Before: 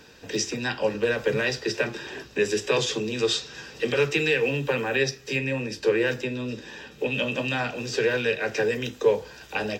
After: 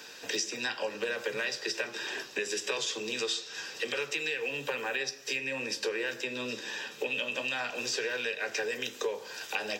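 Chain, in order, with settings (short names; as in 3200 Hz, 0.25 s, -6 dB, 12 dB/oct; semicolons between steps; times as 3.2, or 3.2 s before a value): high shelf 6600 Hz +11.5 dB; vocal rider within 4 dB 2 s; weighting filter A; compressor, threshold -30 dBFS, peak gain reduction 12.5 dB; on a send: reverb RT60 0.70 s, pre-delay 77 ms, DRR 17.5 dB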